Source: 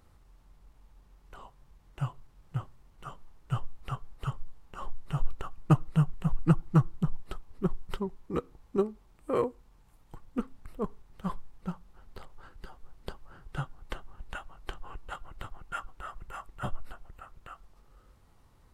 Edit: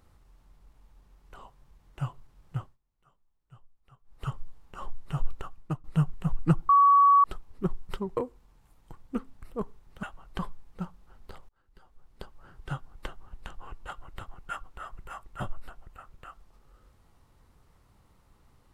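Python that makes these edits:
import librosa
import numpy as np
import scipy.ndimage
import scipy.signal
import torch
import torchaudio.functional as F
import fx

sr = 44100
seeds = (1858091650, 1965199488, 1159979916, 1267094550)

y = fx.edit(x, sr, fx.fade_down_up(start_s=2.58, length_s=1.66, db=-23.0, fade_s=0.2),
    fx.fade_out_to(start_s=5.38, length_s=0.46, floor_db=-23.0),
    fx.bleep(start_s=6.69, length_s=0.55, hz=1130.0, db=-15.0),
    fx.cut(start_s=8.17, length_s=1.23),
    fx.fade_in_span(start_s=12.36, length_s=1.09),
    fx.move(start_s=14.35, length_s=0.36, to_s=11.26), tone=tone)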